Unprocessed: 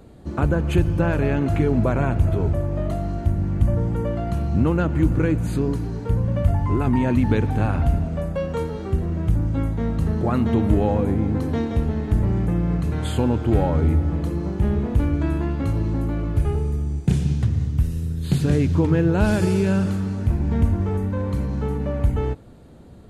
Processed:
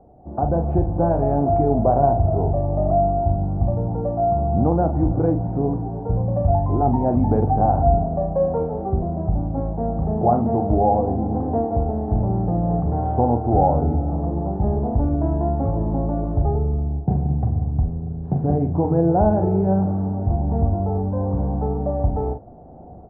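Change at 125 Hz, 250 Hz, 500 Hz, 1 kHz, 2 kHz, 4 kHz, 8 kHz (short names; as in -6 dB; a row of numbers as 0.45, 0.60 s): -0.5 dB, 0.0 dB, +4.5 dB, +10.0 dB, under -15 dB, under -35 dB, n/a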